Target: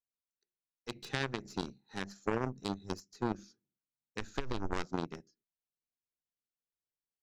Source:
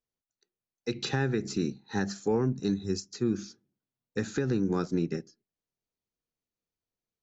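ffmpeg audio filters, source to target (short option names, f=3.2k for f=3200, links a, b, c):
-filter_complex "[0:a]aeval=exprs='0.141*(cos(1*acos(clip(val(0)/0.141,-1,1)))-cos(1*PI/2))+0.0708*(cos(3*acos(clip(val(0)/0.141,-1,1)))-cos(3*PI/2))+0.02*(cos(5*acos(clip(val(0)/0.141,-1,1)))-cos(5*PI/2))+0.00224*(cos(6*acos(clip(val(0)/0.141,-1,1)))-cos(6*PI/2))':c=same,asplit=3[a][b][c];[a]afade=t=out:st=4.19:d=0.02[d];[b]asubboost=boost=10:cutoff=54,afade=t=in:st=4.19:d=0.02,afade=t=out:st=4.82:d=0.02[e];[c]afade=t=in:st=4.82:d=0.02[f];[d][e][f]amix=inputs=3:normalize=0,volume=1dB"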